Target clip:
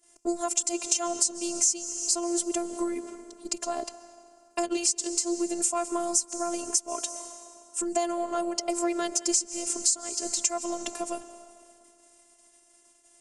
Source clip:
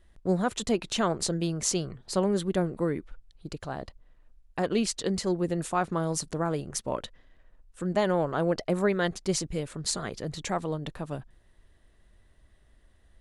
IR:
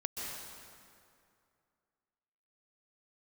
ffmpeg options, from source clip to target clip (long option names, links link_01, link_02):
-filter_complex "[0:a]acontrast=87,aexciter=amount=14:drive=5.3:freq=5600,agate=range=-11dB:threshold=-48dB:ratio=16:detection=peak,highpass=frequency=140:width=0.5412,highpass=frequency=140:width=1.3066,equalizer=frequency=260:width_type=q:width=4:gain=-6,equalizer=frequency=590:width_type=q:width=4:gain=4,equalizer=frequency=1700:width_type=q:width=4:gain=-7,equalizer=frequency=2700:width_type=q:width=4:gain=5,lowpass=frequency=7800:width=0.5412,lowpass=frequency=7800:width=1.3066,asplit=2[link_01][link_02];[1:a]atrim=start_sample=2205[link_03];[link_02][link_03]afir=irnorm=-1:irlink=0,volume=-15dB[link_04];[link_01][link_04]amix=inputs=2:normalize=0,acompressor=threshold=-21dB:ratio=5,afftfilt=real='hypot(re,im)*cos(PI*b)':imag='0':win_size=512:overlap=0.75"